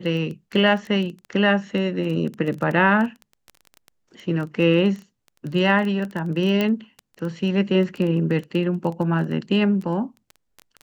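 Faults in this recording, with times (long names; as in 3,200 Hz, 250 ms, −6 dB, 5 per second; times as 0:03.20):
surface crackle 11 per second −27 dBFS
0:06.61: click −10 dBFS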